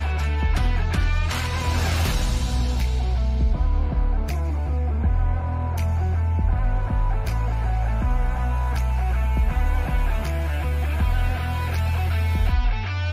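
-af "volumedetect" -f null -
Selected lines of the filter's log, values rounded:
mean_volume: -20.9 dB
max_volume: -11.3 dB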